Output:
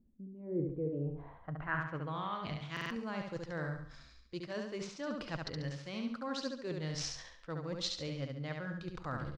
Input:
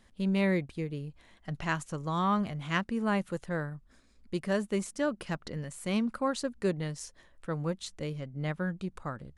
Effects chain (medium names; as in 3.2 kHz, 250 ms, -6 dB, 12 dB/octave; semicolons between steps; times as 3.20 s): median filter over 5 samples; resampled via 22.05 kHz; reverse; compression 12:1, threshold -42 dBFS, peak gain reduction 19 dB; reverse; low-pass sweep 280 Hz -> 5.2 kHz, 0.33–2.64 s; feedback delay 70 ms, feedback 39%, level -4 dB; on a send at -20 dB: reverberation RT60 0.50 s, pre-delay 108 ms; on the sum: spectral noise reduction 10 dB; buffer glitch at 2.72 s, samples 2048, times 3; trim +5.5 dB